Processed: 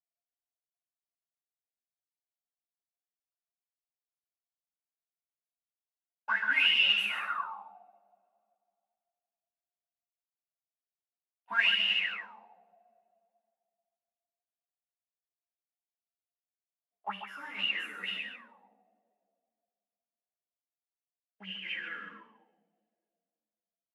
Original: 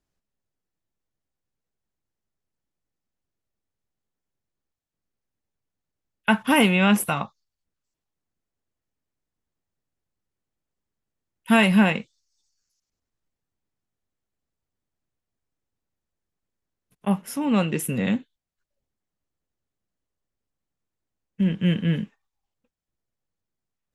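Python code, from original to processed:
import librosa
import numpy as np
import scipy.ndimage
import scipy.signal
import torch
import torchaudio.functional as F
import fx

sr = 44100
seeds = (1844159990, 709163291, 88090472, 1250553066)

p1 = scipy.signal.sosfilt(scipy.signal.butter(12, 190.0, 'highpass', fs=sr, output='sos'), x)
p2 = fx.leveller(p1, sr, passes=3)
p3 = fx.rev_double_slope(p2, sr, seeds[0], early_s=0.96, late_s=2.5, knee_db=-23, drr_db=-4.5)
p4 = fx.auto_wah(p3, sr, base_hz=700.0, top_hz=2900.0, q=20.0, full_db=-2.5, direction='up')
p5 = p4 + fx.echo_single(p4, sr, ms=139, db=-9.5, dry=0)
y = fx.ensemble(p5, sr)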